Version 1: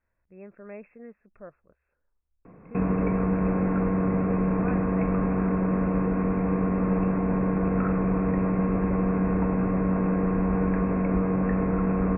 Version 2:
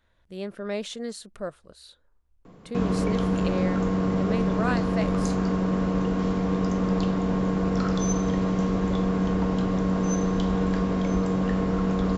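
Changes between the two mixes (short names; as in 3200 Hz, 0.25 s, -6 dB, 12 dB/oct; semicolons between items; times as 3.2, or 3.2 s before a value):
speech +11.0 dB; master: remove brick-wall FIR low-pass 2700 Hz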